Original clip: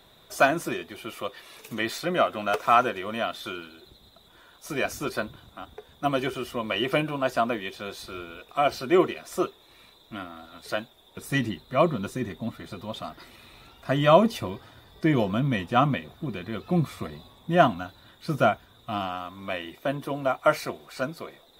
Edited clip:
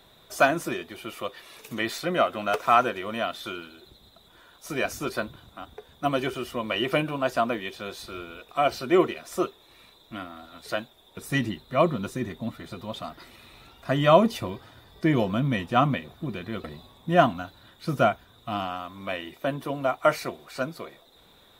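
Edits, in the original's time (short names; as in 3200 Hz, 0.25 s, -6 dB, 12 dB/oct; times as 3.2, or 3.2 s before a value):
16.64–17.05 cut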